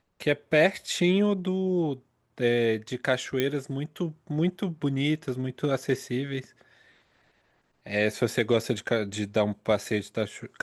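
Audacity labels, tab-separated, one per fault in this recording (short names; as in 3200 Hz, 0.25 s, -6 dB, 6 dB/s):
3.400000	3.400000	pop -12 dBFS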